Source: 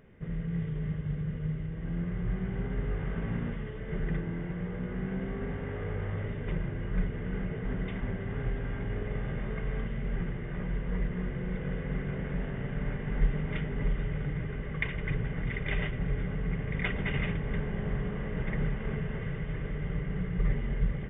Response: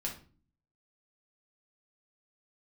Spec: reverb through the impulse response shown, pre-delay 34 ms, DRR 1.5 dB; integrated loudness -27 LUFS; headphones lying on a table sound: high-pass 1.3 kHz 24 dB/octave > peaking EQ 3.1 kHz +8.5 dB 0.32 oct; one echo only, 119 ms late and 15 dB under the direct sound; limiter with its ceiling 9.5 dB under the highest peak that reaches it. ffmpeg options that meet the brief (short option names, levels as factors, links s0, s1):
-filter_complex "[0:a]alimiter=limit=0.0668:level=0:latency=1,aecho=1:1:119:0.178,asplit=2[s0][s1];[1:a]atrim=start_sample=2205,adelay=34[s2];[s1][s2]afir=irnorm=-1:irlink=0,volume=0.75[s3];[s0][s3]amix=inputs=2:normalize=0,highpass=f=1300:w=0.5412,highpass=f=1300:w=1.3066,equalizer=f=3100:t=o:w=0.32:g=8.5,volume=5.96"